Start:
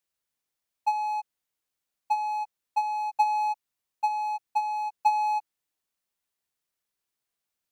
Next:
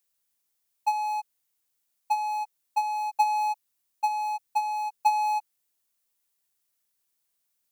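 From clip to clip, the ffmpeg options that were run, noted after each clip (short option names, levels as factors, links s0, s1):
-af "highshelf=f=5800:g=11"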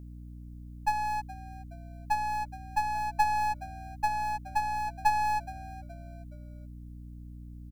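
-filter_complex "[0:a]aeval=exprs='if(lt(val(0),0),0.447*val(0),val(0))':c=same,aeval=exprs='val(0)+0.00708*(sin(2*PI*60*n/s)+sin(2*PI*2*60*n/s)/2+sin(2*PI*3*60*n/s)/3+sin(2*PI*4*60*n/s)/4+sin(2*PI*5*60*n/s)/5)':c=same,asplit=4[s0][s1][s2][s3];[s1]adelay=421,afreqshift=-83,volume=0.126[s4];[s2]adelay=842,afreqshift=-166,volume=0.049[s5];[s3]adelay=1263,afreqshift=-249,volume=0.0191[s6];[s0][s4][s5][s6]amix=inputs=4:normalize=0"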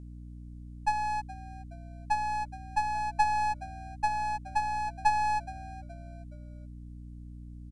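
-af "aresample=22050,aresample=44100"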